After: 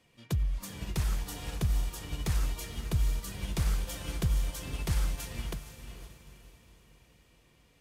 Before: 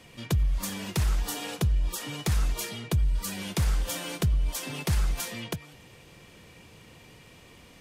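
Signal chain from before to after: diffused feedback echo 0.48 s, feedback 54%, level -6.5 dB; upward expander 1.5:1, over -42 dBFS; gain -3.5 dB

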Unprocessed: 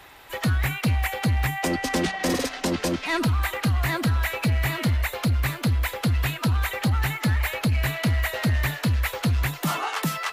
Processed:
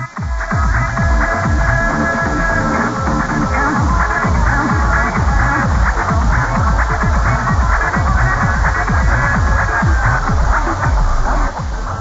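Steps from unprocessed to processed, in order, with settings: tape stop at the end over 1.50 s; LPF 2300 Hz 24 dB/oct; low shelf 190 Hz -7.5 dB; AGC gain up to 15 dB; in parallel at -1 dB: limiter -11.5 dBFS, peak gain reduction 8.5 dB; on the sum: level quantiser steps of 16 dB; bit-crush 5-bit; varispeed -14%; fixed phaser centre 1200 Hz, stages 4; echoes that change speed 0.385 s, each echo -4 st, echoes 3, each echo -6 dB; reverse echo 0.803 s -5.5 dB; gain +2.5 dB; AAC 24 kbps 16000 Hz

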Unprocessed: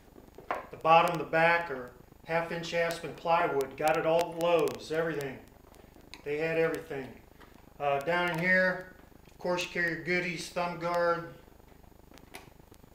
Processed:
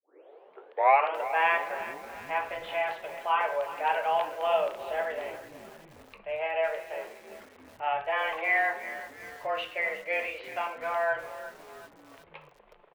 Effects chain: tape start at the beginning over 1.19 s; mistuned SSB +160 Hz 270–3100 Hz; frequency-shifting echo 0.339 s, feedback 59%, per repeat -130 Hz, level -19.5 dB; lo-fi delay 0.367 s, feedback 55%, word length 7-bit, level -14 dB

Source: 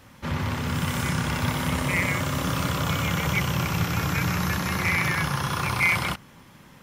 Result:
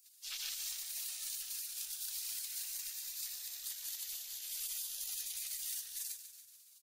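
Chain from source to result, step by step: spectral gate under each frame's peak -30 dB weak; passive tone stack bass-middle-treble 10-0-10; negative-ratio compressor -46 dBFS, ratio -0.5; frequency-shifting echo 0.142 s, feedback 56%, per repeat -39 Hz, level -10.5 dB; gain +3.5 dB

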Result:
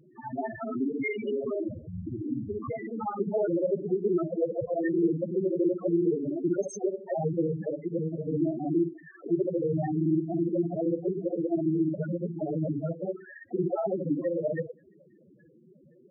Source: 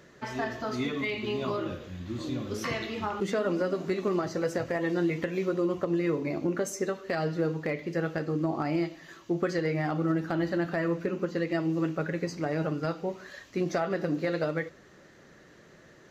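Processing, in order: local time reversal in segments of 47 ms; harmoniser +5 st -11 dB, +12 st -14 dB; loudest bins only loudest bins 4; gain +4 dB

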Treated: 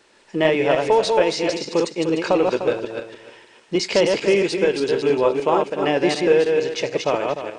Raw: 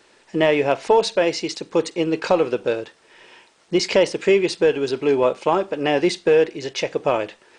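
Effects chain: regenerating reverse delay 0.15 s, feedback 43%, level -3 dB; gain -1.5 dB

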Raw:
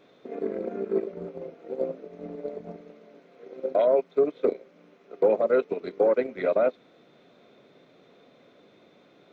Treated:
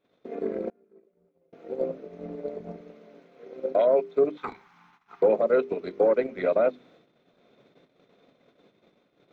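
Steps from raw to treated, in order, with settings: gate -55 dBFS, range -19 dB; low shelf 140 Hz +6 dB; notches 50/100/150/200/250/300/350/400 Hz; 0.69–1.53 flipped gate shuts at -32 dBFS, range -31 dB; 4.37–5.22 EQ curve 140 Hz 0 dB, 580 Hz -25 dB, 840 Hz +13 dB, 2600 Hz +3 dB

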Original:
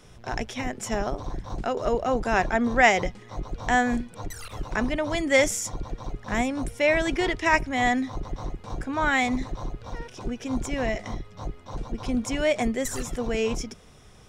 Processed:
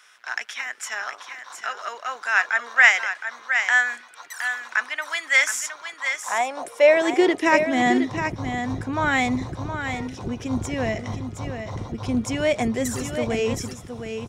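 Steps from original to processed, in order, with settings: high-pass sweep 1500 Hz -> 91 Hz, 5.84–8.47; echo 0.716 s -8 dB; gain +1.5 dB

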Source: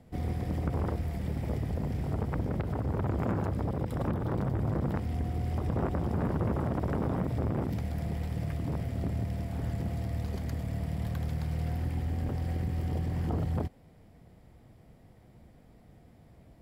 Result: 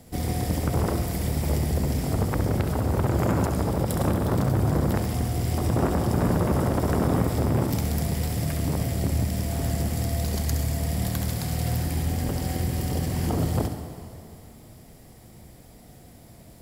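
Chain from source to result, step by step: tone controls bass -2 dB, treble +15 dB; flutter echo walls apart 11.6 m, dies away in 0.49 s; on a send at -9 dB: reverb RT60 2.7 s, pre-delay 58 ms; on the sum: gain +7 dB

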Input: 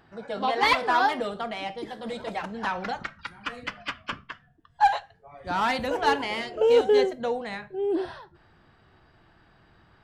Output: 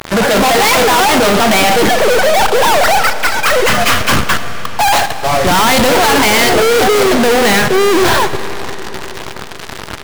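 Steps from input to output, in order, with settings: 1.89–3.68 sine-wave speech; fuzz box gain 49 dB, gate -52 dBFS; sample leveller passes 5; on a send: reverb RT60 5.2 s, pre-delay 10 ms, DRR 10.5 dB; on the sum: gain +1.5 dB

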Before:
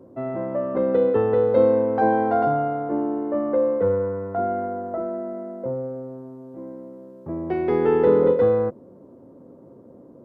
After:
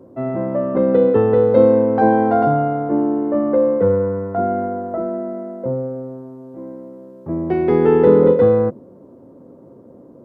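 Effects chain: dynamic EQ 170 Hz, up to +6 dB, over -36 dBFS, Q 0.71; gain +3.5 dB

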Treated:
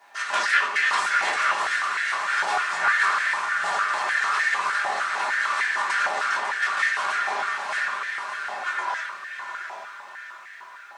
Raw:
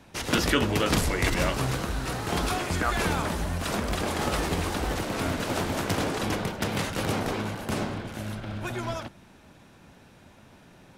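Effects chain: minimum comb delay 5 ms; steep low-pass 9000 Hz 36 dB/oct; bell 1700 Hz +8.5 dB 0.43 oct; shoebox room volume 360 m³, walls furnished, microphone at 3.3 m; added noise pink -62 dBFS; diffused feedback echo 0.749 s, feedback 48%, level -6.5 dB; stepped high-pass 6.6 Hz 820–1800 Hz; gain -6 dB

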